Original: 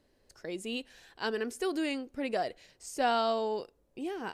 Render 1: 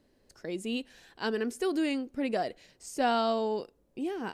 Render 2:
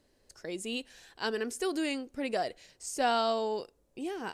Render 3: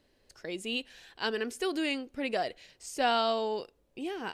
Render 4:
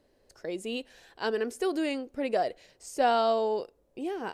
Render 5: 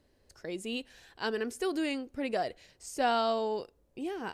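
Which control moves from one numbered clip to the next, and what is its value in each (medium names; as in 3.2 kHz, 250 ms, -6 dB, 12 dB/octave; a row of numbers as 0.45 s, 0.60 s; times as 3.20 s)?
peaking EQ, frequency: 220 Hz, 7.7 kHz, 3 kHz, 550 Hz, 77 Hz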